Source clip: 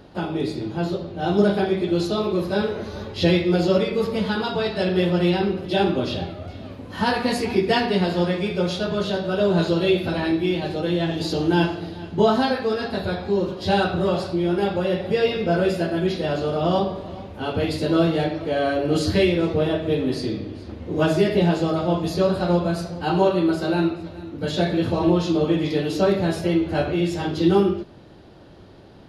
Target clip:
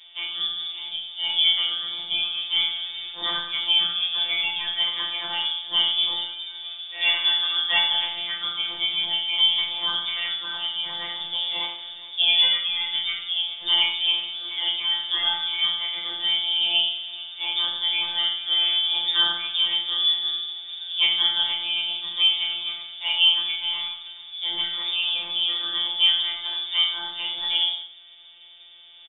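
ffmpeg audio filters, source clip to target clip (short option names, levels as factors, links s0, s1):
-af "lowpass=f=3100:t=q:w=0.5098,lowpass=f=3100:t=q:w=0.6013,lowpass=f=3100:t=q:w=0.9,lowpass=f=3100:t=q:w=2.563,afreqshift=-3700,afftfilt=real='hypot(re,im)*cos(PI*b)':imag='0':win_size=1024:overlap=0.75,aecho=1:1:20|42|66.2|92.82|122.1:0.631|0.398|0.251|0.158|0.1"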